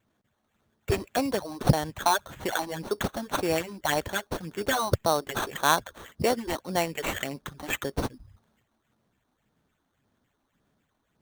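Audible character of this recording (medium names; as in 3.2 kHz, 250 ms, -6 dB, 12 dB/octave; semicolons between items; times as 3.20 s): phasing stages 6, 1.8 Hz, lowest notch 120–4600 Hz; aliases and images of a low sample rate 5 kHz, jitter 0%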